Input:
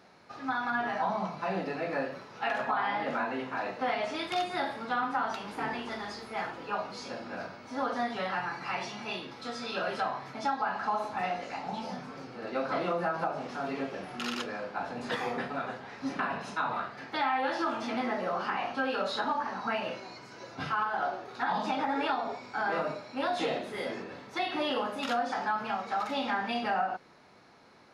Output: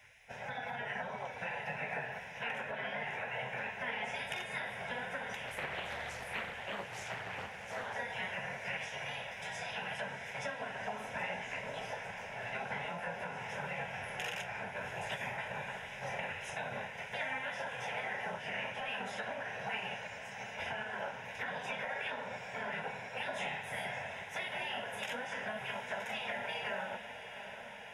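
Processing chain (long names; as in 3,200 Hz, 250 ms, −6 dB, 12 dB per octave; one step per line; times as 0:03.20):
hum removal 269.3 Hz, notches 3
gate on every frequency bin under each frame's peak −10 dB weak
downward compressor 3 to 1, threshold −43 dBFS, peak gain reduction 8.5 dB
phaser with its sweep stopped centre 1,200 Hz, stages 6
feedback delay with all-pass diffusion 731 ms, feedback 74%, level −10.5 dB
0:05.47–0:07.94: highs frequency-modulated by the lows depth 0.44 ms
level +8 dB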